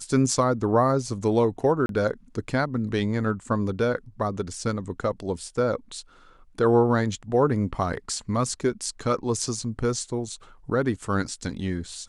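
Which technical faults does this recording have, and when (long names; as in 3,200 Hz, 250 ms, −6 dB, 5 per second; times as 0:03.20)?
0:01.86–0:01.89: drop-out 32 ms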